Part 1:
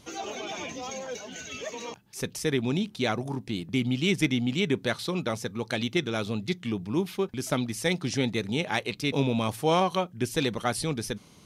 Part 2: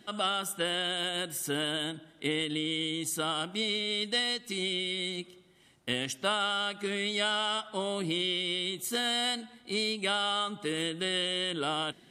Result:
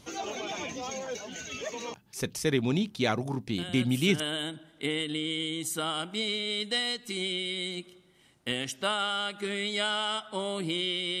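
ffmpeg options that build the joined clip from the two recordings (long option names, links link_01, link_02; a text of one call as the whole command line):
ffmpeg -i cue0.wav -i cue1.wav -filter_complex "[1:a]asplit=2[link_01][link_02];[0:a]apad=whole_dur=11.2,atrim=end=11.2,atrim=end=4.202[link_03];[link_02]atrim=start=1.608:end=8.61[link_04];[link_01]atrim=start=0.99:end=1.61,asetpts=PTS-STARTPTS,volume=-7.5dB,afade=type=in:duration=0.004:curve=hsin,afade=type=out:start_time=0.616:duration=0.004:curve=hsin,adelay=3580[link_05];[link_03][link_04]acrossfade=duration=0.004:curve1=hsin:curve2=hsin[link_06];[link_06][link_05]amix=inputs=2:normalize=0" out.wav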